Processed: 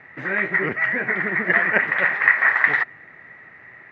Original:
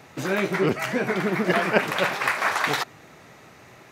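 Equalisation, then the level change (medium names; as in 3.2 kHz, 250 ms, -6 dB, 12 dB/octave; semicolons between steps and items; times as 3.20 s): resonant low-pass 1.9 kHz, resonance Q 11; -5.5 dB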